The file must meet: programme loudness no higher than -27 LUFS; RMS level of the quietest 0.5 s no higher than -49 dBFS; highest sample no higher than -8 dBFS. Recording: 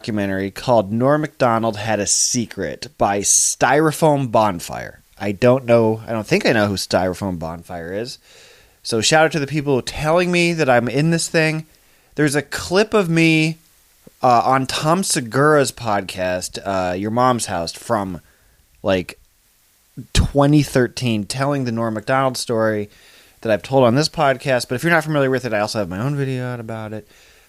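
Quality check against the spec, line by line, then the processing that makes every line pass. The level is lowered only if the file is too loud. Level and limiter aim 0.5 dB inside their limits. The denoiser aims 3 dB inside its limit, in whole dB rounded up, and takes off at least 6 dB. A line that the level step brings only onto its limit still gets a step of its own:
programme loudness -18.0 LUFS: fail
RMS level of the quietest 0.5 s -57 dBFS: pass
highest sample -3.0 dBFS: fail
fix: trim -9.5 dB

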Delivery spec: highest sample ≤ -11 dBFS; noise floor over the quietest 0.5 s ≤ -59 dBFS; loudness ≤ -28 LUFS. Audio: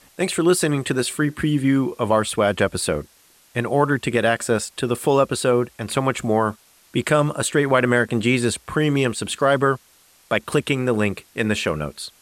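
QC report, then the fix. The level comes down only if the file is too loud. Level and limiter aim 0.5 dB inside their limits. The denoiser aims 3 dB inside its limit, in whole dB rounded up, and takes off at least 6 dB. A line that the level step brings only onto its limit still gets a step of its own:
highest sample -5.0 dBFS: fail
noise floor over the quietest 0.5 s -55 dBFS: fail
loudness -21.0 LUFS: fail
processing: trim -7.5 dB

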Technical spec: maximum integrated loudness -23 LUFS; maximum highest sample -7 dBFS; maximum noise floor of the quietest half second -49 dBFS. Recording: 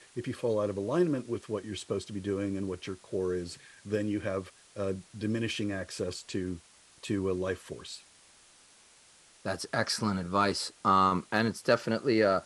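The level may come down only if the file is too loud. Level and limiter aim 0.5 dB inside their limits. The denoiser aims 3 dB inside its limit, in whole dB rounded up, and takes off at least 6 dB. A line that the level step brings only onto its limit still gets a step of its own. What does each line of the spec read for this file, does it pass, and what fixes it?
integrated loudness -31.5 LUFS: pass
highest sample -11.5 dBFS: pass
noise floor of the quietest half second -59 dBFS: pass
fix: none needed

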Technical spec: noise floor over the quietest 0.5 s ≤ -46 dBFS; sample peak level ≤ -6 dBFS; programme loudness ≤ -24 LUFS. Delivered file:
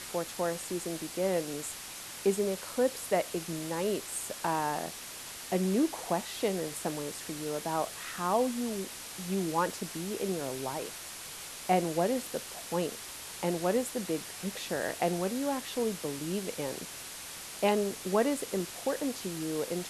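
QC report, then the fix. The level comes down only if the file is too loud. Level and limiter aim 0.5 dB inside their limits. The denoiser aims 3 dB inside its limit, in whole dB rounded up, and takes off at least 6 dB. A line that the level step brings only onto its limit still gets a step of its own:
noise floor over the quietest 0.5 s -44 dBFS: fail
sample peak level -13.5 dBFS: pass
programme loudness -33.0 LUFS: pass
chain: noise reduction 6 dB, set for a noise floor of -44 dBFS

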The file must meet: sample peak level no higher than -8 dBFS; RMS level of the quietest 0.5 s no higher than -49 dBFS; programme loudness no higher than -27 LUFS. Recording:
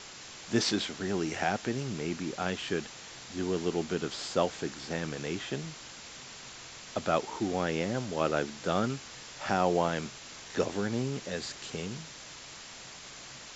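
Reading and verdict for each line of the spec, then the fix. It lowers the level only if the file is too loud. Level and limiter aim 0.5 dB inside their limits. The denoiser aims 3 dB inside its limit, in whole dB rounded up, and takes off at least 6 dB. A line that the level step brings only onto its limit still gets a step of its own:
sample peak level -13.0 dBFS: pass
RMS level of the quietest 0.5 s -47 dBFS: fail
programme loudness -32.5 LUFS: pass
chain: noise reduction 6 dB, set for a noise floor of -47 dBFS

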